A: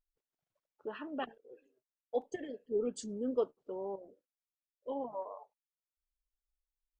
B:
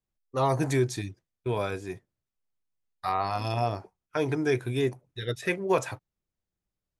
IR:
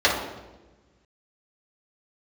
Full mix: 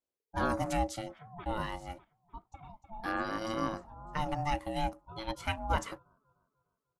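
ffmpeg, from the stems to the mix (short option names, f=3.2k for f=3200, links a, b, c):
-filter_complex "[0:a]equalizer=f=130:t=o:w=0.65:g=13.5,alimiter=level_in=4.5dB:limit=-24dB:level=0:latency=1:release=288,volume=-4.5dB,adelay=200,volume=-5.5dB,asplit=2[a][b];[b]volume=-9.5dB[c];[1:a]highpass=51,volume=-3dB,asplit=2[d][e];[e]apad=whole_len=317235[f];[a][f]sidechaincompress=threshold=-44dB:ratio=8:attack=44:release=228[g];[c]aecho=0:1:300|600|900|1200|1500|1800:1|0.42|0.176|0.0741|0.0311|0.0131[h];[g][d][h]amix=inputs=3:normalize=0,aeval=exprs='val(0)*sin(2*PI*440*n/s)':c=same"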